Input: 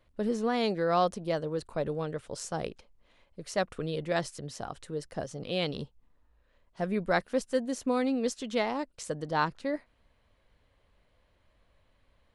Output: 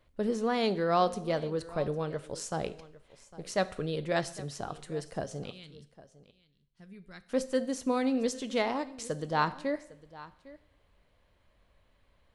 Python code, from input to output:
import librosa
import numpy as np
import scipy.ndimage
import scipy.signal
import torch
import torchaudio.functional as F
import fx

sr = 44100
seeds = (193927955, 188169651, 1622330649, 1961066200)

y = fx.tone_stack(x, sr, knobs='6-0-2', at=(5.5, 7.29))
y = y + 10.0 ** (-19.0 / 20.0) * np.pad(y, (int(805 * sr / 1000.0), 0))[:len(y)]
y = fx.rev_double_slope(y, sr, seeds[0], early_s=0.66, late_s=1.7, knee_db=-27, drr_db=12.5)